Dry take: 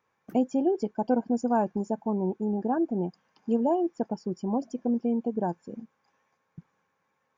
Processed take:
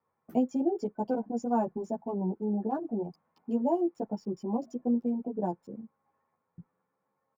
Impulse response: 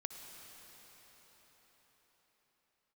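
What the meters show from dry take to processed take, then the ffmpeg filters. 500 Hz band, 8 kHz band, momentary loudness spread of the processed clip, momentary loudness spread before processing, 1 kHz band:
-3.5 dB, n/a, 7 LU, 7 LU, -3.5 dB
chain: -filter_complex "[0:a]aemphasis=mode=production:type=50kf,bandreject=f=1.6k:w=7.9,acrossover=split=250|1900[a][b][c];[c]aeval=exprs='val(0)*gte(abs(val(0)),0.00168)':c=same[d];[a][b][d]amix=inputs=3:normalize=0,highshelf=f=2.9k:g=-10.5,asplit=2[e][f];[f]adelay=10.6,afreqshift=0.67[g];[e][g]amix=inputs=2:normalize=1"

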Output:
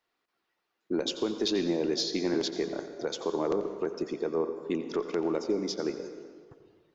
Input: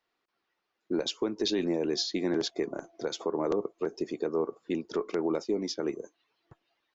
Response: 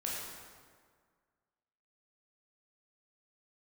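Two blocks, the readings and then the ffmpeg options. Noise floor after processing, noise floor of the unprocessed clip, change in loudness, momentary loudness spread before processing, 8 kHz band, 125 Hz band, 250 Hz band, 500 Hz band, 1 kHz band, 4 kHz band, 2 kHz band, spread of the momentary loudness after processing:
-81 dBFS, -82 dBFS, +0.5 dB, 6 LU, n/a, +0.5 dB, +0.5 dB, +0.5 dB, +0.5 dB, +0.5 dB, +0.5 dB, 7 LU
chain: -filter_complex "[0:a]asplit=2[a][b];[1:a]atrim=start_sample=2205,adelay=88[c];[b][c]afir=irnorm=-1:irlink=0,volume=-11.5dB[d];[a][d]amix=inputs=2:normalize=0,aeval=exprs='0.141*(cos(1*acos(clip(val(0)/0.141,-1,1)))-cos(1*PI/2))+0.0112*(cos(2*acos(clip(val(0)/0.141,-1,1)))-cos(2*PI/2))+0.00447*(cos(4*acos(clip(val(0)/0.141,-1,1)))-cos(4*PI/2))':c=same"

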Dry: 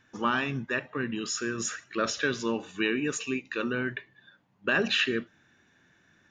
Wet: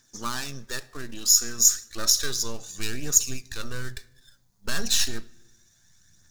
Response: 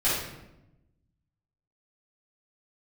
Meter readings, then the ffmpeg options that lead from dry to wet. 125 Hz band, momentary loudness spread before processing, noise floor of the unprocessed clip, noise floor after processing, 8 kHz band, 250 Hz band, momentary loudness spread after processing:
+0.5 dB, 8 LU, -65 dBFS, -63 dBFS, +16.5 dB, -8.5 dB, 17 LU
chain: -filter_complex "[0:a]aeval=exprs='if(lt(val(0),0),0.447*val(0),val(0))':c=same,asubboost=boost=6:cutoff=120,aphaser=in_gain=1:out_gain=1:delay=4.6:decay=0.36:speed=0.32:type=triangular,aexciter=amount=13.3:drive=4.9:freq=4.2k,asplit=2[a][b];[1:a]atrim=start_sample=2205[c];[b][c]afir=irnorm=-1:irlink=0,volume=-31.5dB[d];[a][d]amix=inputs=2:normalize=0,volume=-5dB"

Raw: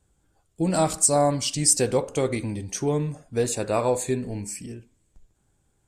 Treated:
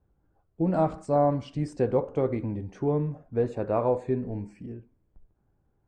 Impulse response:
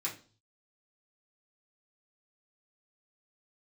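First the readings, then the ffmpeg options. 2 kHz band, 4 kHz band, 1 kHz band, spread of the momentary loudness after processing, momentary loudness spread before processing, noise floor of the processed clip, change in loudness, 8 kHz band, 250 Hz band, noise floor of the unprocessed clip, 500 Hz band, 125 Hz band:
-10.0 dB, under -20 dB, -2.5 dB, 12 LU, 13 LU, -72 dBFS, -4.0 dB, under -35 dB, -1.5 dB, -69 dBFS, -1.5 dB, -1.5 dB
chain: -af "lowpass=1.2k,volume=-1.5dB"

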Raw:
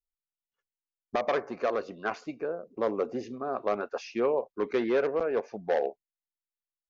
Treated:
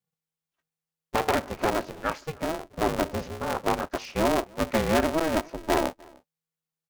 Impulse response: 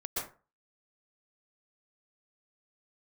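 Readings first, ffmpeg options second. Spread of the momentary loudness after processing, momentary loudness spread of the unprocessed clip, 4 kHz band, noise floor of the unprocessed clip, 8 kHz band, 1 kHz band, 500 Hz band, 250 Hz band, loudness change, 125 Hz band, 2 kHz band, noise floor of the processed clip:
8 LU, 8 LU, +11.5 dB, under -85 dBFS, n/a, +6.5 dB, +0.5 dB, +6.5 dB, +3.0 dB, +14.0 dB, +6.0 dB, under -85 dBFS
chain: -filter_complex "[0:a]asplit=2[a][b];[b]adelay=303.2,volume=-26dB,highshelf=f=4k:g=-6.82[c];[a][c]amix=inputs=2:normalize=0,aeval=exprs='val(0)*sgn(sin(2*PI*160*n/s))':c=same,volume=3dB"

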